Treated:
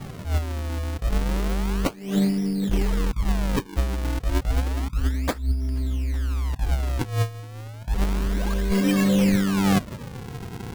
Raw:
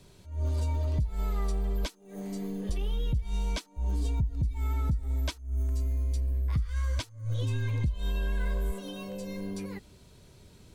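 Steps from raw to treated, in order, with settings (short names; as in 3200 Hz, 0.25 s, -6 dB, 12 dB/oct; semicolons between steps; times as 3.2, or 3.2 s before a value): graphic EQ 125/250/2000 Hz +11/+10/+12 dB; negative-ratio compressor -28 dBFS, ratio -0.5; decimation with a swept rate 42×, swing 160% 0.31 Hz; gain +6 dB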